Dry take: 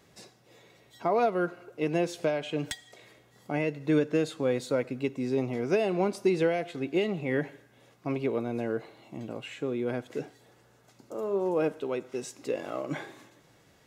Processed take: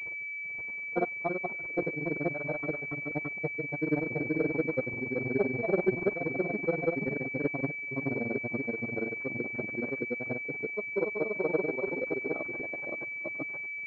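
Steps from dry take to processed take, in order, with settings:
delay that plays each chunk backwards 121 ms, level −3.5 dB
granular cloud 57 ms, grains 21 per second, spray 551 ms
switching amplifier with a slow clock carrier 2,300 Hz

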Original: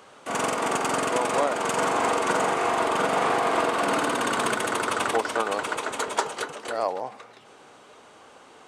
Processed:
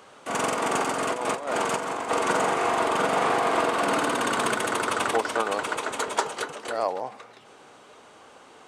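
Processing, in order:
0:00.76–0:02.11: compressor whose output falls as the input rises −27 dBFS, ratio −0.5

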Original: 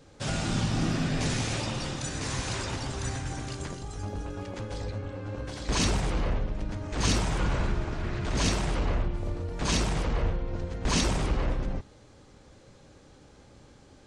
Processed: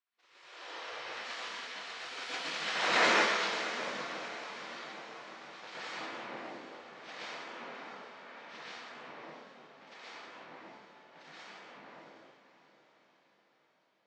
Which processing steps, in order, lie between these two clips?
source passing by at 0:03.02, 24 m/s, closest 3.8 metres
gate on every frequency bin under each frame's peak −20 dB weak
high-pass filter 170 Hz 12 dB per octave
parametric band 9,000 Hz −10 dB 1.2 octaves
automatic gain control gain up to 15 dB
high-frequency loss of the air 140 metres
feedback delay with all-pass diffusion 655 ms, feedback 52%, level −12 dB
dense smooth reverb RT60 0.68 s, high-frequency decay 0.9×, pre-delay 105 ms, DRR −7 dB

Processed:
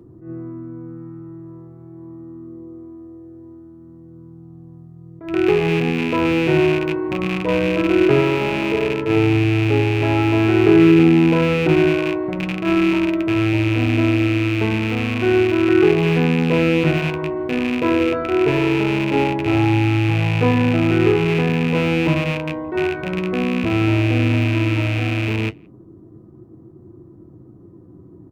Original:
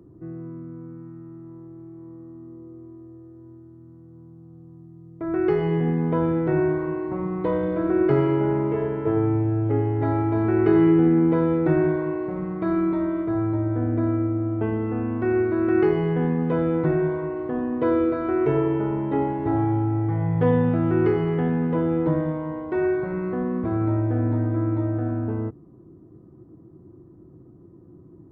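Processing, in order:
loose part that buzzes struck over −29 dBFS, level −19 dBFS
flanger 0.15 Hz, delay 8.4 ms, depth 4.2 ms, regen −55%
far-end echo of a speakerphone 170 ms, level −30 dB
level that may rise only so fast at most 130 dB per second
level +9 dB

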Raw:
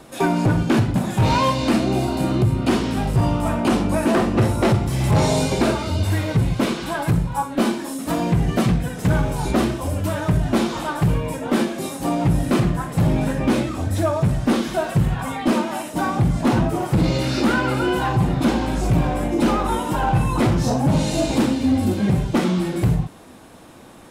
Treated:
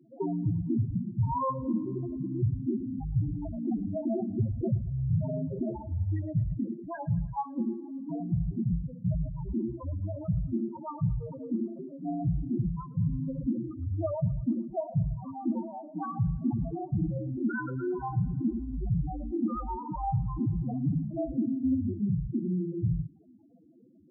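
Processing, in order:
harmonic generator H 4 −29 dB, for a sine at −11.5 dBFS
spectral peaks only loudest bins 4
feedback echo with a high-pass in the loop 111 ms, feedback 65%, high-pass 400 Hz, level −21 dB
level −8.5 dB

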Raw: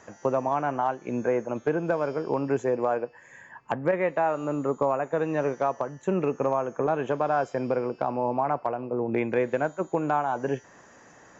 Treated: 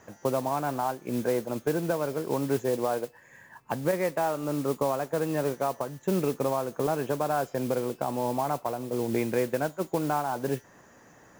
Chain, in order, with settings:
low-shelf EQ 320 Hz +6 dB
noise that follows the level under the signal 17 dB
level −4 dB

